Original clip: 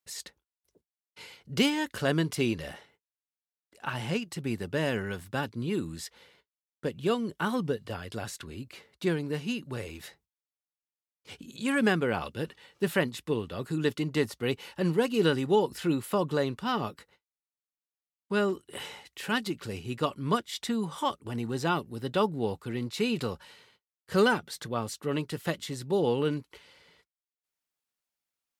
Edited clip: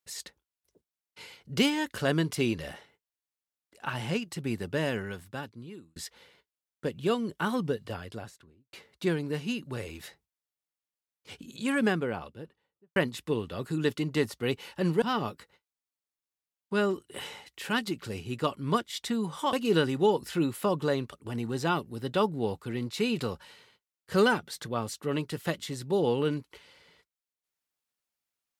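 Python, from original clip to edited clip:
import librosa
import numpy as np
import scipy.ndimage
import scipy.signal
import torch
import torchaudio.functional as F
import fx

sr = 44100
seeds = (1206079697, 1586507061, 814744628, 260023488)

y = fx.studio_fade_out(x, sr, start_s=7.84, length_s=0.89)
y = fx.studio_fade_out(y, sr, start_s=11.56, length_s=1.4)
y = fx.edit(y, sr, fx.fade_out_span(start_s=4.75, length_s=1.21),
    fx.move(start_s=15.02, length_s=1.59, to_s=21.12), tone=tone)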